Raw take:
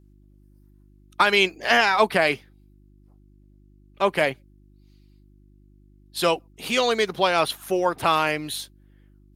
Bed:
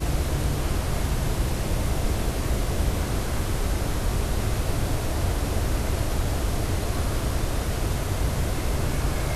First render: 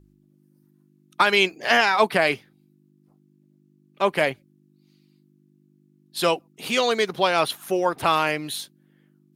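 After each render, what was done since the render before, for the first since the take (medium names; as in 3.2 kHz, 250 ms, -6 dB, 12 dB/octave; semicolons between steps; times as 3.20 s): de-hum 50 Hz, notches 2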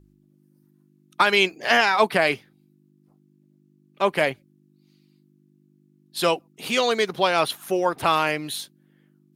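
no audible change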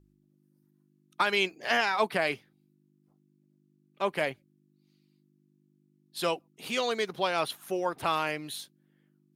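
trim -8 dB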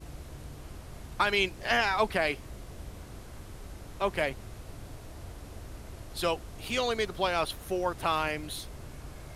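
add bed -19 dB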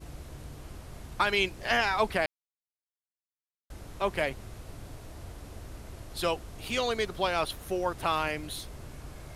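2.26–3.70 s: mute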